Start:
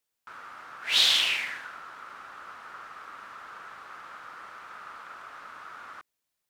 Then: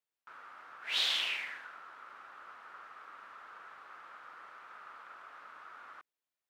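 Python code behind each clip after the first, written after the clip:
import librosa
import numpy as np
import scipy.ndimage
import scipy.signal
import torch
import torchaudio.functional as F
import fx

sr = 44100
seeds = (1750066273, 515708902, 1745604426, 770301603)

y = fx.bass_treble(x, sr, bass_db=-8, treble_db=-7)
y = y * 10.0 ** (-7.0 / 20.0)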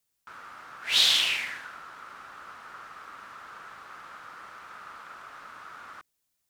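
y = fx.bass_treble(x, sr, bass_db=12, treble_db=10)
y = y * 10.0 ** (6.0 / 20.0)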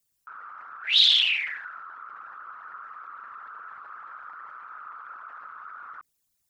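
y = fx.envelope_sharpen(x, sr, power=2.0)
y = y * 10.0 ** (3.0 / 20.0)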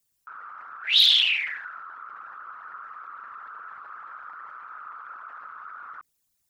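y = np.clip(x, -10.0 ** (-10.5 / 20.0), 10.0 ** (-10.5 / 20.0))
y = y * 10.0 ** (1.0 / 20.0)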